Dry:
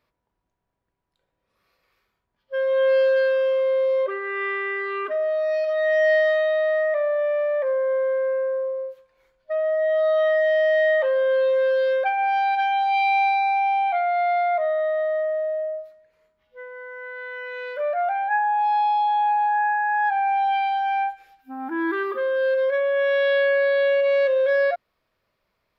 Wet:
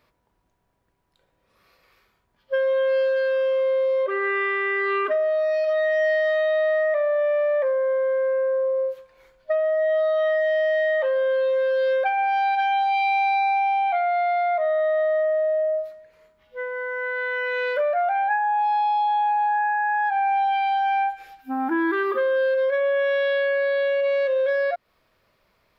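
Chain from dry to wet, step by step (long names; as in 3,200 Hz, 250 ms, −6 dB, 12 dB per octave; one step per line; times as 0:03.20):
downward compressor, threshold −29 dBFS, peak gain reduction 12 dB
level +8.5 dB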